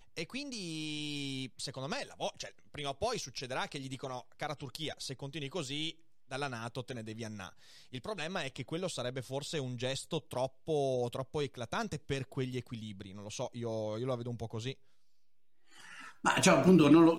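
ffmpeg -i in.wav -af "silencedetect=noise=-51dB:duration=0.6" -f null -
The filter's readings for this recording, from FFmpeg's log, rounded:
silence_start: 14.74
silence_end: 15.70 | silence_duration: 0.96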